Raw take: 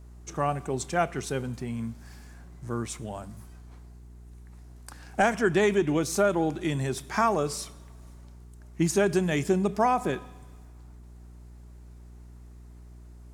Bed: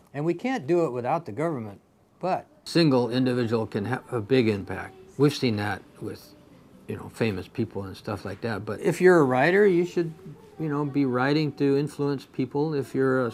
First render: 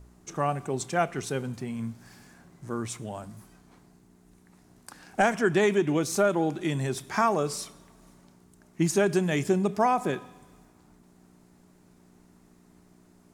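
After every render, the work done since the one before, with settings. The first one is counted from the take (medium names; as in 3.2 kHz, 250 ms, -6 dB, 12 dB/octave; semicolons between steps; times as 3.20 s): de-hum 60 Hz, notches 2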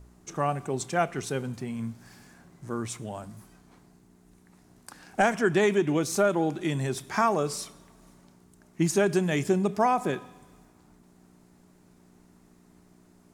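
no audible change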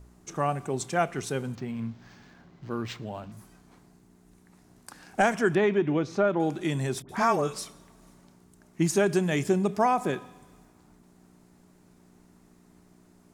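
1.55–3.32 s: decimation joined by straight lines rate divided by 4×; 5.55–6.40 s: distance through air 230 m; 7.02–7.59 s: phase dispersion highs, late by 70 ms, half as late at 1.2 kHz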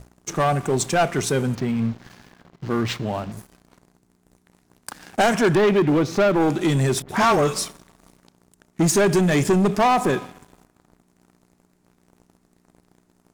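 waveshaping leveller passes 3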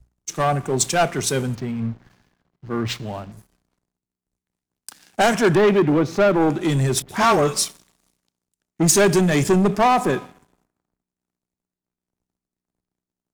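three bands expanded up and down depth 70%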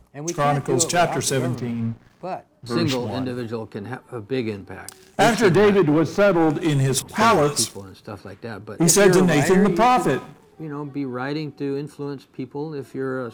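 add bed -3.5 dB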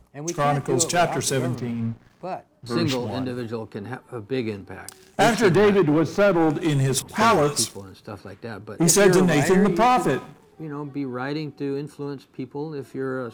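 trim -1.5 dB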